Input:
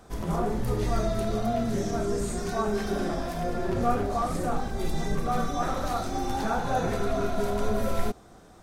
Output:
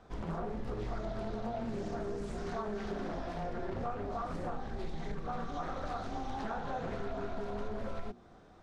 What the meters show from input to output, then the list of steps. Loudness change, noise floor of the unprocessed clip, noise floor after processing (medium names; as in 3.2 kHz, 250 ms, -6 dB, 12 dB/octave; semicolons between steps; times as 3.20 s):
-10.5 dB, -52 dBFS, -57 dBFS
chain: low-pass 4.1 kHz 12 dB/octave; hum notches 60/120/180/240/300/360 Hz; compression, threshold -28 dBFS, peak gain reduction 10 dB; loudspeaker Doppler distortion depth 0.44 ms; trim -5.5 dB